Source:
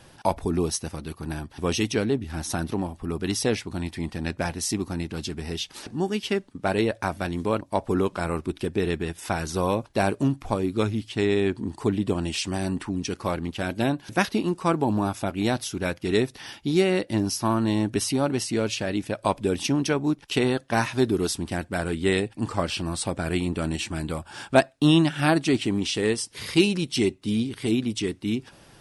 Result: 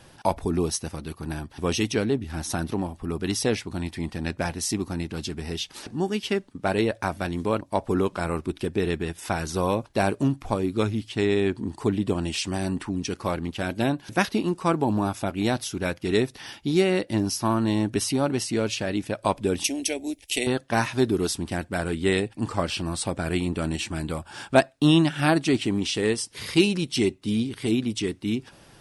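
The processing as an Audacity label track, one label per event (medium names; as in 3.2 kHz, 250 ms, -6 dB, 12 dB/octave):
19.640000	20.470000	FFT filter 100 Hz 0 dB, 140 Hz -30 dB, 260 Hz -6 dB, 440 Hz -7 dB, 660 Hz 0 dB, 1.2 kHz -28 dB, 2.1 kHz +2 dB, 4.7 kHz +1 dB, 7.8 kHz +10 dB, 12 kHz +12 dB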